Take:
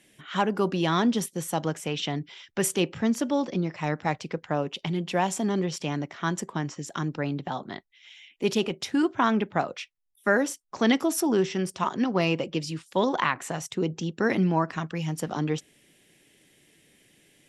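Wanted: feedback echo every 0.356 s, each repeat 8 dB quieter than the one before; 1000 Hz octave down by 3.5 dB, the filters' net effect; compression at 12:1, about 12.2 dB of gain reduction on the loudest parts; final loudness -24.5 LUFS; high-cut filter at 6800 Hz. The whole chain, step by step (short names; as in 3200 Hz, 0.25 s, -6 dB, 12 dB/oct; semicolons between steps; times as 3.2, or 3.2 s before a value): LPF 6800 Hz; bell 1000 Hz -4.5 dB; compressor 12:1, threshold -31 dBFS; feedback echo 0.356 s, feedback 40%, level -8 dB; gain +12 dB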